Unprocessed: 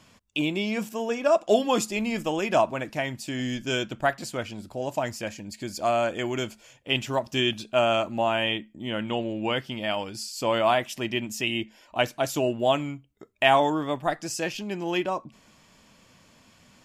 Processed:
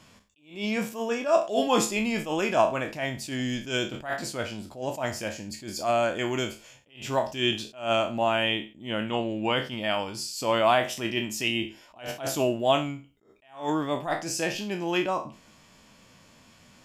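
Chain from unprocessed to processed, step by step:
peak hold with a decay on every bin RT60 0.34 s
level that may rise only so fast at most 150 dB per second

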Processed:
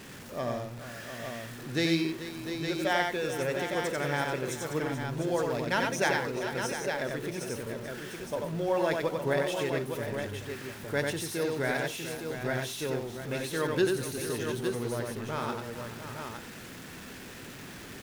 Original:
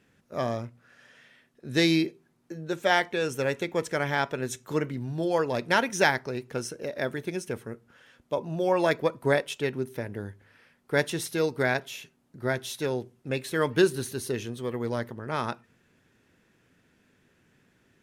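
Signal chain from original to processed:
converter with a step at zero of −35 dBFS
multi-tap delay 91/433/699/861 ms −3.5/−13/−10/−6.5 dB
level −6.5 dB

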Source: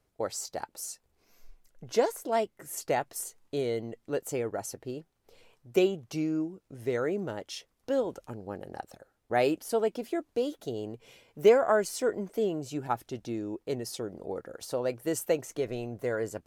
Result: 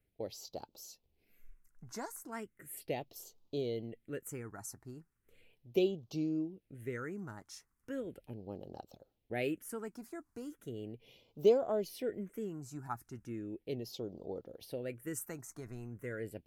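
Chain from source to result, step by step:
dynamic equaliser 1,000 Hz, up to −4 dB, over −39 dBFS, Q 1.3
all-pass phaser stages 4, 0.37 Hz, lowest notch 500–1,800 Hz
level −5 dB

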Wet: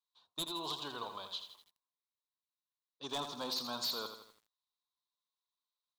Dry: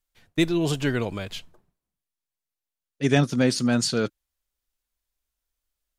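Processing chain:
in parallel at −9 dB: hard clipping −24 dBFS, distortion −6 dB
on the sum: pair of resonant band-passes 2,000 Hz, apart 1.9 octaves
wave folding −30 dBFS
feedback echo at a low word length 82 ms, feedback 55%, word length 10 bits, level −8 dB

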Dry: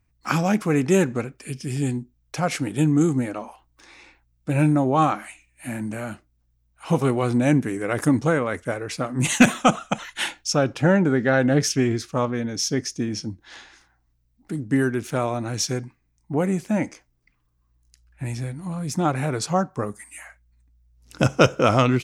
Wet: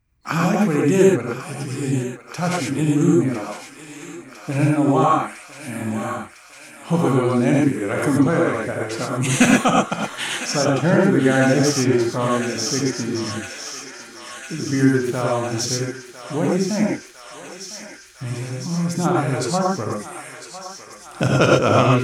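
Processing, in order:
feedback echo with a high-pass in the loop 1,004 ms, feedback 84%, high-pass 950 Hz, level −10 dB
reverb whose tail is shaped and stops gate 140 ms rising, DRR −2 dB
level −1.5 dB

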